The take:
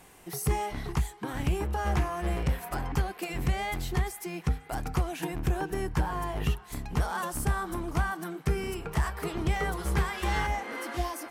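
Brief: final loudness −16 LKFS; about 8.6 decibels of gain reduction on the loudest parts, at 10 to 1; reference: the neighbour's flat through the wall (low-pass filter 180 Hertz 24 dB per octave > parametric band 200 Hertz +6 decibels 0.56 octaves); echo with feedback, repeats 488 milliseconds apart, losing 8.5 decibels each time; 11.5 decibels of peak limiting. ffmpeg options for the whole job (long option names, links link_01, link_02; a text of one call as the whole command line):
ffmpeg -i in.wav -af "acompressor=threshold=-30dB:ratio=10,alimiter=level_in=7dB:limit=-24dB:level=0:latency=1,volume=-7dB,lowpass=frequency=180:width=0.5412,lowpass=frequency=180:width=1.3066,equalizer=frequency=200:width_type=o:width=0.56:gain=6,aecho=1:1:488|976|1464|1952:0.376|0.143|0.0543|0.0206,volume=28dB" out.wav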